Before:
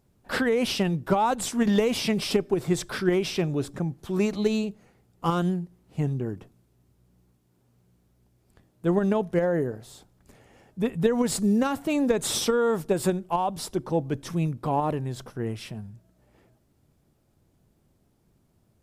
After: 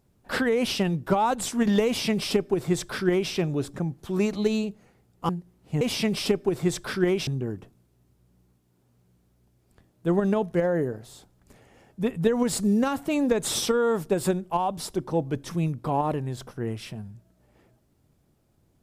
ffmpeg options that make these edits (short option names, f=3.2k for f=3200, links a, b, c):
-filter_complex "[0:a]asplit=4[a][b][c][d];[a]atrim=end=5.292[e];[b]atrim=start=5.538:end=6.062[f];[c]atrim=start=1.858:end=3.322[g];[d]atrim=start=6.058[h];[e][f]acrossfade=d=0.004:c1=hsin:c2=hsin[i];[i][g]acrossfade=d=0.004:c1=hsin:c2=hsin[j];[j][h]acrossfade=d=0.004:c1=hsin:c2=hsin"